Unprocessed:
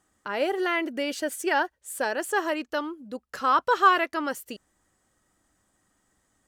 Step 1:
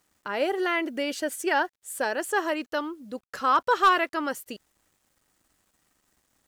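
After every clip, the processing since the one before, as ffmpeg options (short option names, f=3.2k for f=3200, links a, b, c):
-af "volume=13dB,asoftclip=hard,volume=-13dB,acrusher=bits=10:mix=0:aa=0.000001"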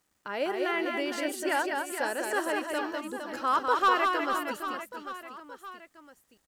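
-af "aecho=1:1:200|460|798|1237|1809:0.631|0.398|0.251|0.158|0.1,volume=-4.5dB"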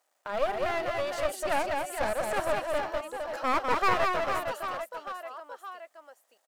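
-af "highpass=f=630:t=q:w=3.5,aeval=exprs='clip(val(0),-1,0.0251)':c=same,volume=-1.5dB"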